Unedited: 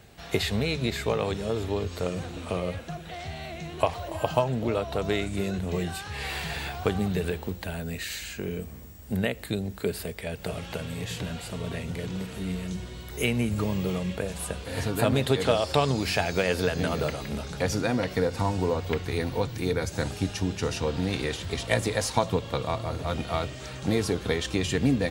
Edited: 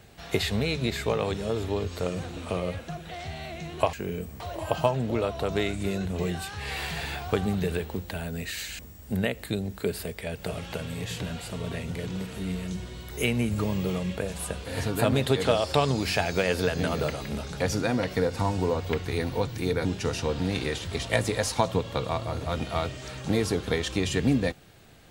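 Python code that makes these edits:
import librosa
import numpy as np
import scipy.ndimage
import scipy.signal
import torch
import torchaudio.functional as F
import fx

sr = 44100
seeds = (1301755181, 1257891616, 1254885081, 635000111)

y = fx.edit(x, sr, fx.move(start_s=8.32, length_s=0.47, to_s=3.93),
    fx.cut(start_s=19.85, length_s=0.58), tone=tone)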